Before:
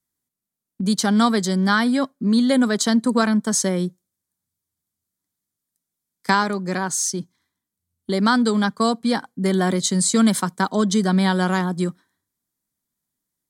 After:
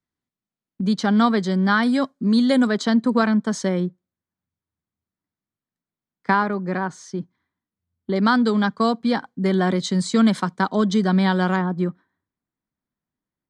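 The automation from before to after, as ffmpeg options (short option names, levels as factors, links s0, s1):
-af "asetnsamples=n=441:p=0,asendcmd='1.83 lowpass f 6800;2.67 lowpass f 3500;3.8 lowpass f 2100;8.16 lowpass f 3900;11.56 lowpass f 2000',lowpass=3300"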